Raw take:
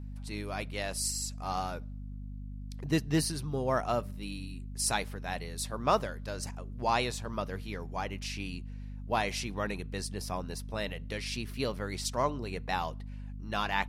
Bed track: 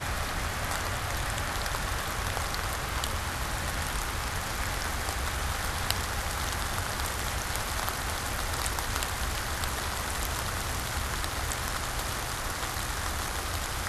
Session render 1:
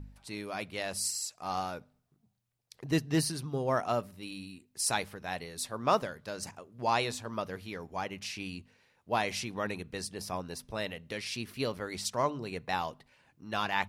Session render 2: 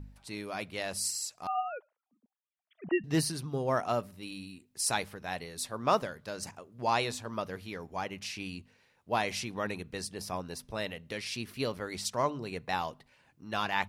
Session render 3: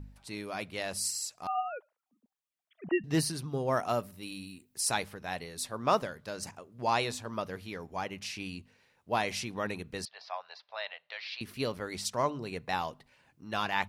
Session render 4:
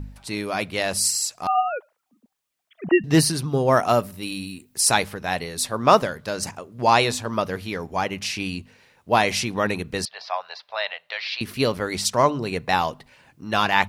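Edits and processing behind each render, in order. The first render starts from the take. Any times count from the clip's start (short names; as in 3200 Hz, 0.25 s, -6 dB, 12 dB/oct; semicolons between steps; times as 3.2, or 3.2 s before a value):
de-hum 50 Hz, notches 5
1.47–3.04 sine-wave speech
3.72–4.8 high shelf 11000 Hz +11 dB; 10.05–11.41 elliptic band-pass 670–4300 Hz
gain +11.5 dB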